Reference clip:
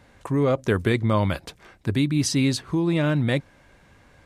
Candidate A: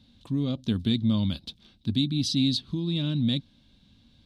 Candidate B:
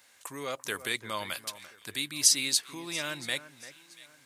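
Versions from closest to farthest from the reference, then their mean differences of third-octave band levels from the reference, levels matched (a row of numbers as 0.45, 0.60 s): A, B; 6.5, 11.0 dB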